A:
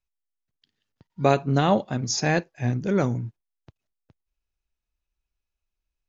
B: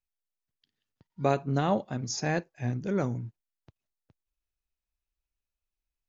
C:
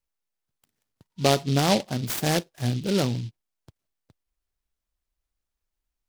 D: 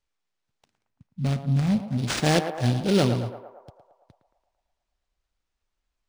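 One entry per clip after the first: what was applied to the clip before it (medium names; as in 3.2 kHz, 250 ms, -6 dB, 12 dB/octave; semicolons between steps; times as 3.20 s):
dynamic bell 3.4 kHz, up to -4 dB, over -42 dBFS, Q 1.1; trim -6 dB
delay time shaken by noise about 3.6 kHz, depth 0.11 ms; trim +5 dB
time-frequency box 0.77–1.98 s, 260–12000 Hz -19 dB; band-passed feedback delay 112 ms, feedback 69%, band-pass 810 Hz, level -6.5 dB; decimation joined by straight lines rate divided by 3×; trim +3 dB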